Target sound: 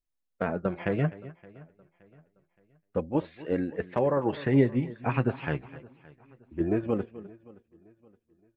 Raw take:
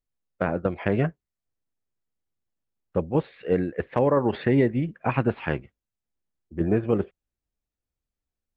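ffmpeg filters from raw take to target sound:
ffmpeg -i in.wav -filter_complex "[0:a]asplit=2[link_01][link_02];[link_02]aecho=0:1:254:0.126[link_03];[link_01][link_03]amix=inputs=2:normalize=0,flanger=delay=2.8:depth=5.9:regen=44:speed=0.3:shape=triangular,asplit=2[link_04][link_05];[link_05]aecho=0:1:570|1140|1710:0.0708|0.029|0.0119[link_06];[link_04][link_06]amix=inputs=2:normalize=0" out.wav

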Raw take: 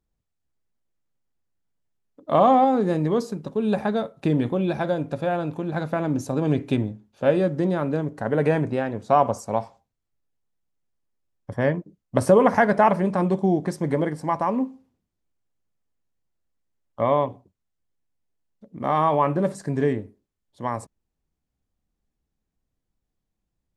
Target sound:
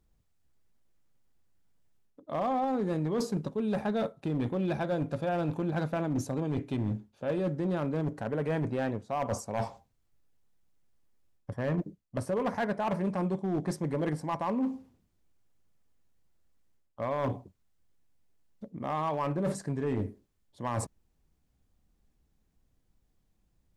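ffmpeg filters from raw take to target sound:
ffmpeg -i in.wav -af "lowshelf=frequency=160:gain=3.5,areverse,acompressor=threshold=-32dB:ratio=16,areverse,asoftclip=type=hard:threshold=-30dB,volume=5.5dB" out.wav

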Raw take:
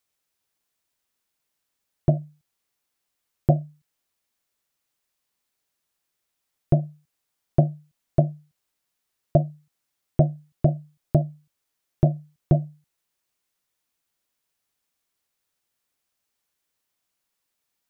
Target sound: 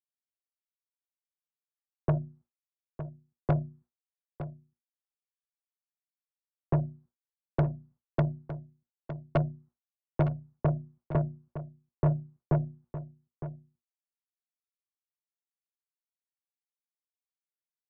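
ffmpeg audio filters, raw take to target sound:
ffmpeg -i in.wav -filter_complex "[0:a]bandreject=frequency=60:width_type=h:width=6,bandreject=frequency=120:width_type=h:width=6,bandreject=frequency=180:width_type=h:width=6,bandreject=frequency=240:width_type=h:width=6,bandreject=frequency=300:width_type=h:width=6,bandreject=frequency=360:width_type=h:width=6,agate=range=-33dB:threshold=-51dB:ratio=3:detection=peak,lowpass=frequency=1200:width=0.5412,lowpass=frequency=1200:width=1.3066,acrossover=split=170|310[link_01][link_02][link_03];[link_02]acompressor=threshold=-34dB:ratio=6[link_04];[link_01][link_04][link_03]amix=inputs=3:normalize=0,asoftclip=type=tanh:threshold=-19.5dB,asplit=2[link_05][link_06];[link_06]aecho=0:1:910:0.251[link_07];[link_05][link_07]amix=inputs=2:normalize=0" out.wav

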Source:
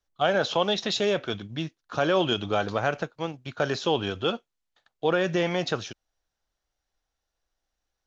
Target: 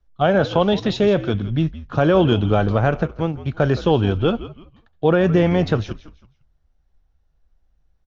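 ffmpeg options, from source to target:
ffmpeg -i in.wav -filter_complex "[0:a]aemphasis=mode=reproduction:type=riaa,asplit=4[link_01][link_02][link_03][link_04];[link_02]adelay=166,afreqshift=-81,volume=-15dB[link_05];[link_03]adelay=332,afreqshift=-162,volume=-25.2dB[link_06];[link_04]adelay=498,afreqshift=-243,volume=-35.3dB[link_07];[link_01][link_05][link_06][link_07]amix=inputs=4:normalize=0,volume=4.5dB" out.wav

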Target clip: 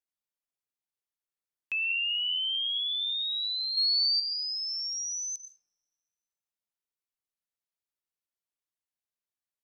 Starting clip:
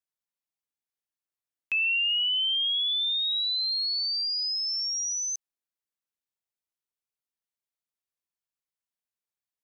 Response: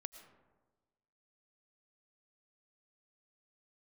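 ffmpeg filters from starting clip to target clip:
-filter_complex "[0:a]asettb=1/sr,asplit=3[link_01][link_02][link_03];[link_01]atrim=end=3.774[link_04];[link_02]atrim=start=3.77:end=4.2,asetpts=PTS-STARTPTS,afade=type=in:duration=0.004:curve=qsin,afade=type=out:start_time=0.426:duration=0.004:curve=qsin,acontrast=82[link_05];[link_03]atrim=start=4.196[link_06];[link_04][link_05]acrossfade=duration=0.004:curve1=hsin:curve2=qsin[link_07];[link_07][link_06]acrossfade=duration=0.004:curve1=qsin:curve2=hsin[link_08];[1:a]atrim=start_sample=2205,asetrate=40572,aresample=44100[link_09];[link_08][link_09]afir=irnorm=-1:irlink=0"

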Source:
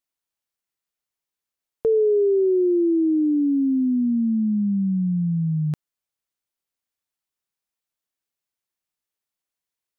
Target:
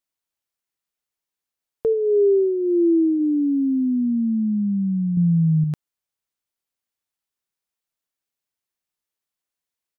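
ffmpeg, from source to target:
ffmpeg -i in.wav -filter_complex "[0:a]asplit=3[link_01][link_02][link_03];[link_01]afade=type=out:start_time=1.92:duration=0.02[link_04];[link_02]asplit=2[link_05][link_06];[link_06]adelay=15,volume=-8dB[link_07];[link_05][link_07]amix=inputs=2:normalize=0,afade=type=in:start_time=1.92:duration=0.02,afade=type=out:start_time=3.19:duration=0.02[link_08];[link_03]afade=type=in:start_time=3.19:duration=0.02[link_09];[link_04][link_08][link_09]amix=inputs=3:normalize=0,asettb=1/sr,asplit=3[link_10][link_11][link_12];[link_10]atrim=end=5.174[link_13];[link_11]atrim=start=5.17:end=5.64,asetpts=PTS-STARTPTS,afade=type=in:duration=0.004:curve=qsin,afade=type=out:start_time=0.466:duration=0.004:curve=qsin,acontrast=32[link_14];[link_12]atrim=start=5.636[link_15];[link_13][link_14]acrossfade=duration=0.004:curve1=hsin:curve2=qsin[link_16];[link_16][link_15]acrossfade=duration=0.004:curve1=qsin:curve2=hsin" out.wav

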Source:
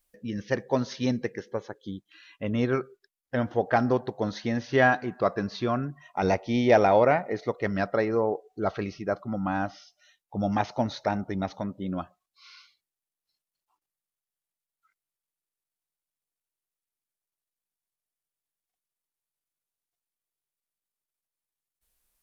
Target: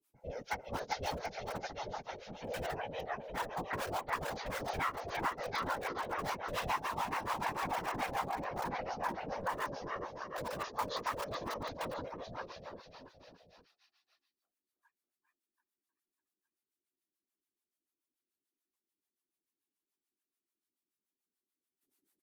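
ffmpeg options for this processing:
ffmpeg -i in.wav -filter_complex "[0:a]aeval=exprs='val(0)*sin(2*PI*320*n/s)':channel_layout=same,acrossover=split=260|3000[link_01][link_02][link_03];[link_01]acompressor=threshold=-40dB:ratio=6[link_04];[link_04][link_02][link_03]amix=inputs=3:normalize=0,lowshelf=frequency=370:gain=-5.5,asplit=2[link_05][link_06];[link_06]adelay=13,volume=-3.5dB[link_07];[link_05][link_07]amix=inputs=2:normalize=0,aecho=1:1:390|741|1057|1341|1597:0.631|0.398|0.251|0.158|0.1,acrossover=split=250|580[link_08][link_09][link_10];[link_09]aeval=exprs='(mod(47.3*val(0)+1,2)-1)/47.3':channel_layout=same[link_11];[link_08][link_11][link_10]amix=inputs=3:normalize=0,acrossover=split=520[link_12][link_13];[link_12]aeval=exprs='val(0)*(1-1/2+1/2*cos(2*PI*6.9*n/s))':channel_layout=same[link_14];[link_13]aeval=exprs='val(0)*(1-1/2-1/2*cos(2*PI*6.9*n/s))':channel_layout=same[link_15];[link_14][link_15]amix=inputs=2:normalize=0,acompressor=threshold=-31dB:ratio=6,afftfilt=real='hypot(re,im)*cos(2*PI*random(0))':imag='hypot(re,im)*sin(2*PI*random(1))':win_size=512:overlap=0.75,volume=5.5dB" out.wav

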